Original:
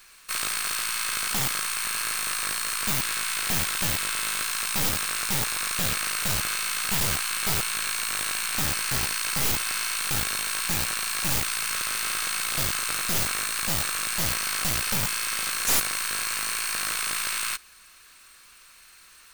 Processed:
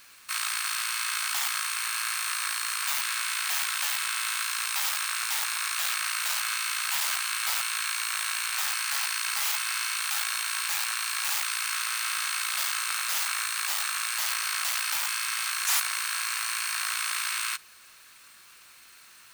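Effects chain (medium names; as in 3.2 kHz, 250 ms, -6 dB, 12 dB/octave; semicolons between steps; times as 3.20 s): high-pass 890 Hz 24 dB/octave; treble shelf 6.5 kHz -4 dB; bit crusher 9-bit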